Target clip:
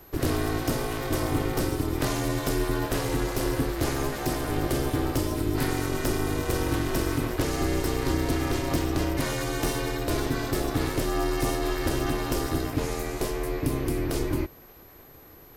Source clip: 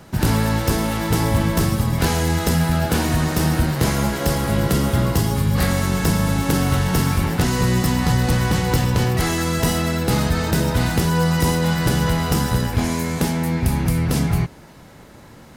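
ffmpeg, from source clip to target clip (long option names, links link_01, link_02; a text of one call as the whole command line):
ffmpeg -i in.wav -af "aeval=exprs='val(0)*sin(2*PI*200*n/s)':channel_layout=same,aeval=exprs='val(0)+0.00447*sin(2*PI*12000*n/s)':channel_layout=same,volume=-5dB" out.wav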